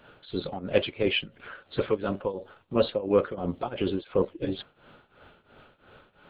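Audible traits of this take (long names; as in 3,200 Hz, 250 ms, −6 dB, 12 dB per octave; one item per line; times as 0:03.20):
tremolo triangle 2.9 Hz, depth 90%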